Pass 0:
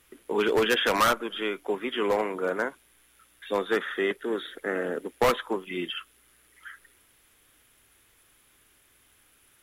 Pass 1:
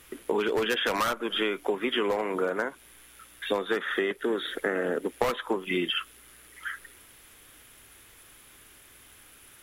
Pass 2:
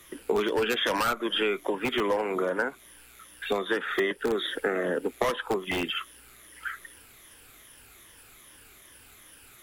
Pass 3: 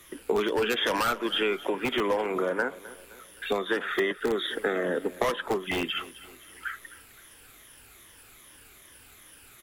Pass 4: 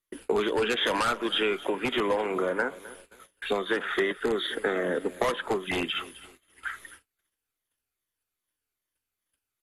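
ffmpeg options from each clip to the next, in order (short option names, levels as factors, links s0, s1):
-af "acompressor=threshold=0.0251:ratio=16,volume=2.66"
-filter_complex "[0:a]afftfilt=real='re*pow(10,8/40*sin(2*PI*(1.2*log(max(b,1)*sr/1024/100)/log(2)-(-2.5)*(pts-256)/sr)))':imag='im*pow(10,8/40*sin(2*PI*(1.2*log(max(b,1)*sr/1024/100)/log(2)-(-2.5)*(pts-256)/sr)))':win_size=1024:overlap=0.75,acrossover=split=290|1500[s0][s1][s2];[s0]aeval=exprs='(mod(25.1*val(0)+1,2)-1)/25.1':c=same[s3];[s3][s1][s2]amix=inputs=3:normalize=0"
-af "aecho=1:1:260|520|780|1040:0.126|0.0579|0.0266|0.0123"
-af "agate=range=0.0141:threshold=0.00447:ratio=16:detection=peak" -ar 48000 -c:a mp2 -b:a 64k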